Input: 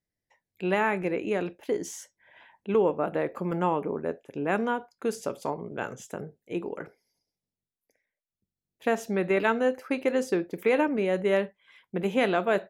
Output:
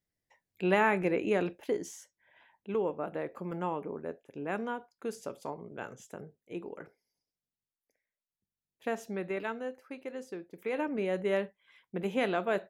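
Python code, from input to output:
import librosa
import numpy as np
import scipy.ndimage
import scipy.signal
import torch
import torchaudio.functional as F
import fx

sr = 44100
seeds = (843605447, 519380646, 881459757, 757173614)

y = fx.gain(x, sr, db=fx.line((1.58, -0.5), (1.98, -8.0), (9.06, -8.0), (9.86, -15.0), (10.48, -15.0), (10.98, -5.5)))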